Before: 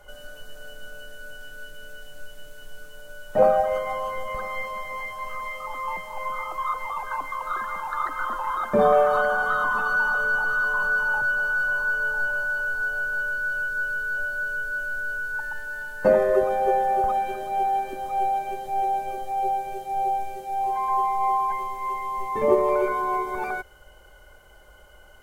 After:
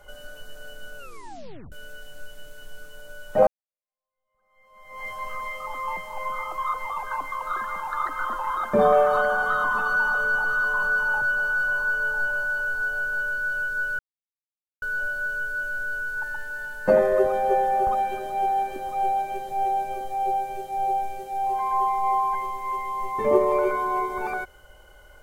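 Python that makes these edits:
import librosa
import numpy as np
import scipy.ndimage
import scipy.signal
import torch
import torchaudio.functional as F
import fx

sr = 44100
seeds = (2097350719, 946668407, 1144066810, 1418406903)

y = fx.edit(x, sr, fx.tape_stop(start_s=0.98, length_s=0.74),
    fx.fade_in_span(start_s=3.47, length_s=1.6, curve='exp'),
    fx.insert_silence(at_s=13.99, length_s=0.83), tone=tone)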